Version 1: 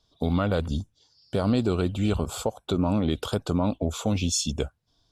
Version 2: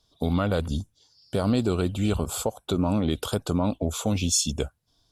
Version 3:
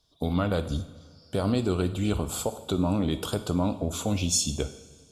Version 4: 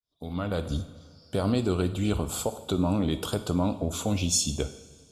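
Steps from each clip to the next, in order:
bell 11000 Hz +9 dB 1 oct
reverb, pre-delay 3 ms, DRR 9.5 dB; gain -2 dB
opening faded in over 0.74 s

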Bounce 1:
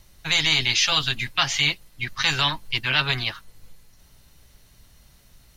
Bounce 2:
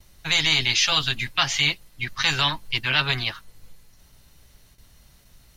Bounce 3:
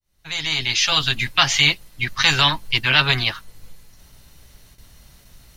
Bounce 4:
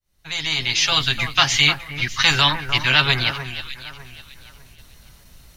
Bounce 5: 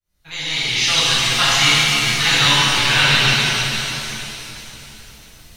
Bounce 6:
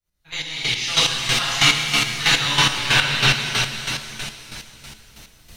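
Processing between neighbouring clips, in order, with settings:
gate with hold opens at -44 dBFS
opening faded in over 1.30 s; gain +5.5 dB
echo with dull and thin repeats by turns 0.301 s, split 1900 Hz, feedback 52%, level -9 dB
shimmer reverb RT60 2.9 s, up +7 st, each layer -8 dB, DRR -10 dB; gain -7 dB
chopper 3.1 Hz, depth 60%, duty 30%

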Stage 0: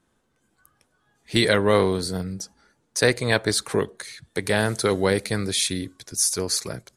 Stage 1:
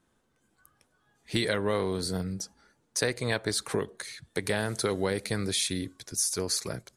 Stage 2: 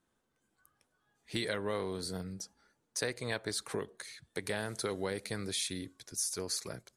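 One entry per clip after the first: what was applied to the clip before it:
compressor 3:1, threshold -23 dBFS, peak gain reduction 8 dB; gain -2.5 dB
low shelf 220 Hz -3.5 dB; gain -6.5 dB

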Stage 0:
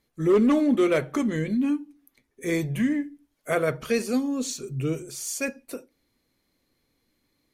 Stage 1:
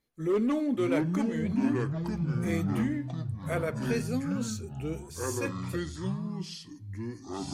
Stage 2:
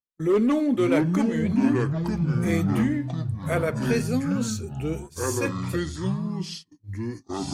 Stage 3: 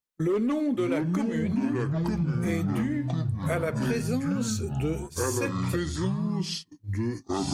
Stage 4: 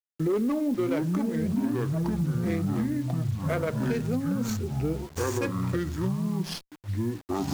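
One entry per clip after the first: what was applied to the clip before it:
echoes that change speed 0.527 s, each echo -5 st, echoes 3; gain -7.5 dB
gate -42 dBFS, range -31 dB; gain +6 dB
compressor, threshold -28 dBFS, peak gain reduction 12 dB; gain +4 dB
Wiener smoothing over 15 samples; requantised 8-bit, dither none; running maximum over 3 samples

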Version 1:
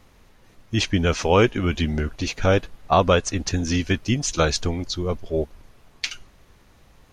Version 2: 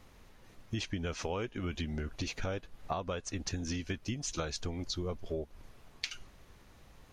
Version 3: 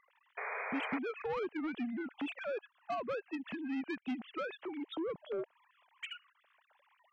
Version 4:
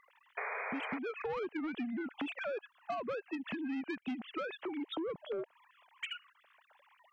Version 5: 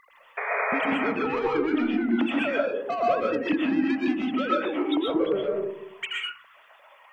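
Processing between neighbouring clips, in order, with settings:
compressor 10:1, threshold -29 dBFS, peak gain reduction 17.5 dB; gain -4 dB
sine-wave speech; soft clip -33 dBFS, distortion -12 dB; painted sound noise, 0.37–0.99, 400–2500 Hz -41 dBFS; gain +1 dB
compressor, threshold -40 dBFS, peak gain reduction 8.5 dB; gain +4.5 dB
digital reverb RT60 0.73 s, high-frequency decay 0.25×, pre-delay 85 ms, DRR -3.5 dB; gain +8 dB

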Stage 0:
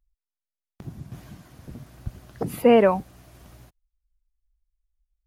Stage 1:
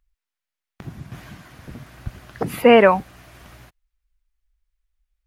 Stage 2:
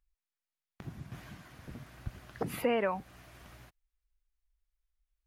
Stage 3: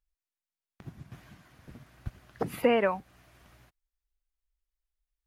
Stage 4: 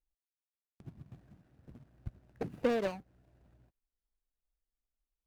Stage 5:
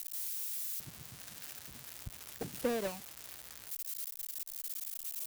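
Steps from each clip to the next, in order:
bell 1900 Hz +9.5 dB 2.2 oct; gain +2 dB
compressor 3:1, threshold -21 dBFS, peak gain reduction 10.5 dB; gain -8.5 dB
upward expander 1.5:1, over -48 dBFS; gain +6.5 dB
median filter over 41 samples; gain -4.5 dB
switching spikes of -26.5 dBFS; gain -3.5 dB

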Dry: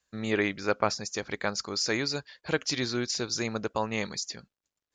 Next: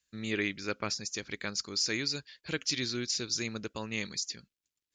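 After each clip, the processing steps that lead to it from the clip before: EQ curve 330 Hz 0 dB, 760 Hz -11 dB, 2500 Hz +4 dB; gain -4.5 dB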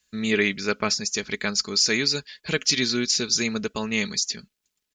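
comb 4.7 ms, depth 49%; gain +9 dB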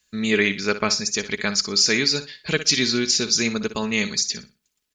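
flutter echo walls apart 10.3 m, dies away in 0.28 s; gain +2.5 dB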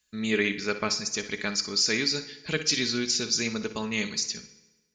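FDN reverb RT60 1.2 s, low-frequency decay 0.95×, high-frequency decay 0.8×, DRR 12 dB; gain -6.5 dB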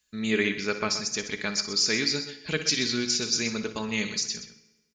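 echo 0.127 s -11.5 dB

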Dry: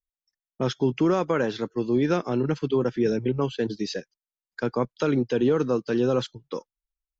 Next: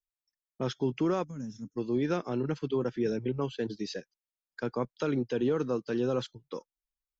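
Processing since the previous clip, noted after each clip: spectral gain 1.24–1.77, 290–5100 Hz -24 dB; gain -6.5 dB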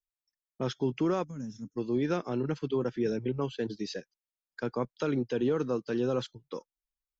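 nothing audible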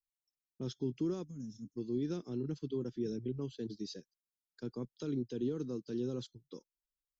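band shelf 1200 Hz -14 dB 2.7 oct; gain -5.5 dB

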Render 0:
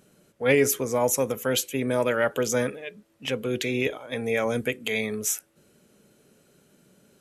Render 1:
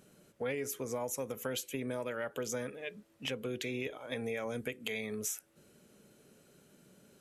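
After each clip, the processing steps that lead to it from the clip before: compressor 6:1, threshold -32 dBFS, peak gain reduction 15.5 dB; gain -2.5 dB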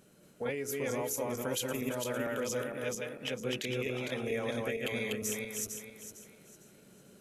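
regenerating reverse delay 0.227 s, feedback 54%, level -0.5 dB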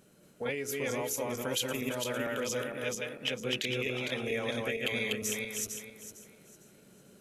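dynamic EQ 3200 Hz, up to +6 dB, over -52 dBFS, Q 0.87

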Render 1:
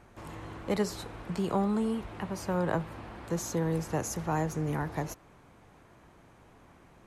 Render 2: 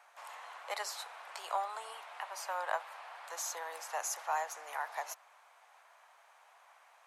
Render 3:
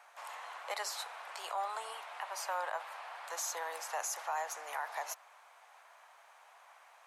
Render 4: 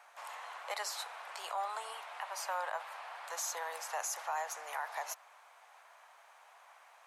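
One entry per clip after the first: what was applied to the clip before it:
steep high-pass 670 Hz 36 dB/oct
limiter -30 dBFS, peak gain reduction 8.5 dB; gain +2.5 dB
dynamic EQ 310 Hz, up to -5 dB, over -58 dBFS, Q 1.7

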